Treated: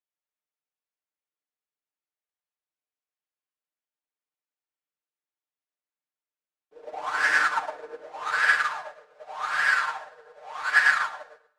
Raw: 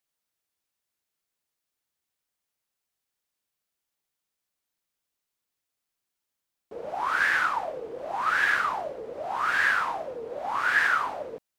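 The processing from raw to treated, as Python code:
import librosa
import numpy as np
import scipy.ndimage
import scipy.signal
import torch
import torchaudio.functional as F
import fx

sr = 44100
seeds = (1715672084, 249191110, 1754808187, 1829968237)

y = scipy.ndimage.median_filter(x, 9, mode='constant')
y = fx.bessel_highpass(y, sr, hz=fx.steps((0.0, 340.0), (8.11, 800.0)), order=8)
y = fx.power_curve(y, sr, exponent=0.7)
y = scipy.signal.sosfilt(scipy.signal.butter(2, 7000.0, 'lowpass', fs=sr, output='sos'), y)
y = fx.high_shelf(y, sr, hz=5000.0, db=5.5)
y = y + 0.84 * np.pad(y, (int(6.6 * sr / 1000.0), 0))[:len(y)]
y = y + 10.0 ** (-5.0 / 20.0) * np.pad(y, (int(109 * sr / 1000.0), 0))[:len(y)]
y = fx.rev_plate(y, sr, seeds[0], rt60_s=2.2, hf_ratio=0.8, predelay_ms=0, drr_db=9.0)
y = fx.upward_expand(y, sr, threshold_db=-38.0, expansion=2.5)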